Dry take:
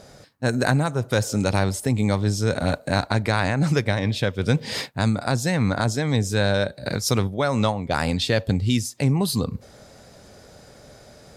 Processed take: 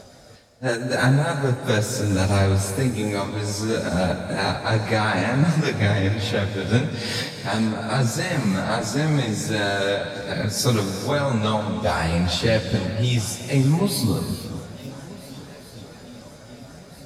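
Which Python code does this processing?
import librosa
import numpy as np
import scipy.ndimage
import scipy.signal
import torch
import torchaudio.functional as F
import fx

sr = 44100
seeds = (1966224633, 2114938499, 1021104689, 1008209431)

y = fx.echo_swing(x, sr, ms=1151, ratio=3, feedback_pct=54, wet_db=-21)
y = fx.stretch_vocoder_free(y, sr, factor=1.5)
y = fx.rev_gated(y, sr, seeds[0], gate_ms=490, shape='flat', drr_db=7.0)
y = fx.echo_warbled(y, sr, ms=445, feedback_pct=71, rate_hz=2.8, cents=195, wet_db=-23)
y = y * librosa.db_to_amplitude(3.0)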